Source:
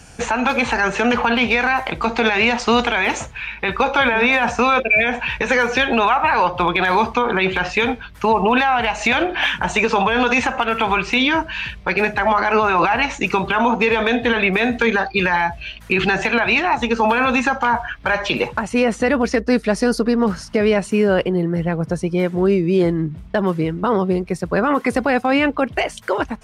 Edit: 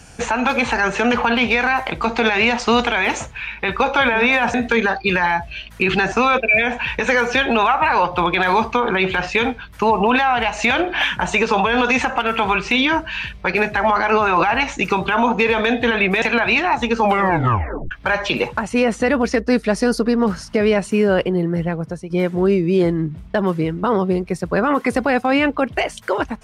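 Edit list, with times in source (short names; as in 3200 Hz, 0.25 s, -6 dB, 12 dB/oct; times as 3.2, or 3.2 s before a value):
14.64–16.22 move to 4.54
17.02 tape stop 0.89 s
21.6–22.1 fade out, to -12 dB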